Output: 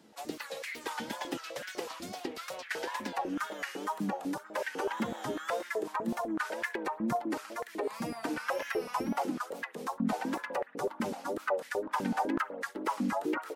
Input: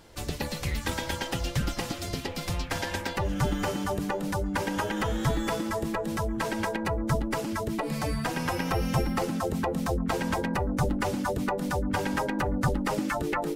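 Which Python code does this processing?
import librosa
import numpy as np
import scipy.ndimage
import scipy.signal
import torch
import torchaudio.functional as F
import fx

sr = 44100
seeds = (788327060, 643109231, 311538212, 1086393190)

y = fx.wow_flutter(x, sr, seeds[0], rate_hz=2.1, depth_cents=120.0)
y = fx.rev_spring(y, sr, rt60_s=1.2, pass_ms=(55,), chirp_ms=50, drr_db=18.5)
y = fx.filter_held_highpass(y, sr, hz=8.0, low_hz=220.0, high_hz=1800.0)
y = y * librosa.db_to_amplitude(-8.5)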